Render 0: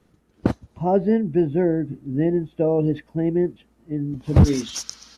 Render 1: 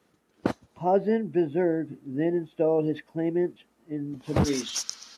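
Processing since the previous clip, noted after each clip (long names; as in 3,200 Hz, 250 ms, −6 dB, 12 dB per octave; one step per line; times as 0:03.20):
high-pass filter 470 Hz 6 dB per octave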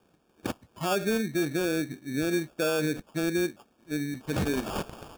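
brickwall limiter −20.5 dBFS, peak gain reduction 10.5 dB
decimation without filtering 22×
level +1.5 dB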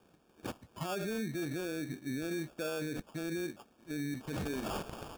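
brickwall limiter −30.5 dBFS, peak gain reduction 11.5 dB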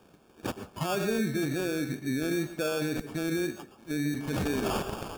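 convolution reverb RT60 0.25 s, pre-delay 112 ms, DRR 9.5 dB
tape wow and flutter 22 cents
level +7 dB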